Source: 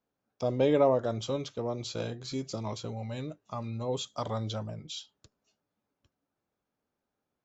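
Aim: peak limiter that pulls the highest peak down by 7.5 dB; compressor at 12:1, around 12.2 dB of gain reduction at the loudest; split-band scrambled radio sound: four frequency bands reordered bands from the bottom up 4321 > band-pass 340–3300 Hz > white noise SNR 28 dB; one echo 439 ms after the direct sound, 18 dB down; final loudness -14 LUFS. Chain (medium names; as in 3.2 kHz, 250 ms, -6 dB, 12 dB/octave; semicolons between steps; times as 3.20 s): compression 12:1, threshold -31 dBFS; peak limiter -29 dBFS; delay 439 ms -18 dB; four frequency bands reordered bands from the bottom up 4321; band-pass 340–3300 Hz; white noise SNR 28 dB; trim +28.5 dB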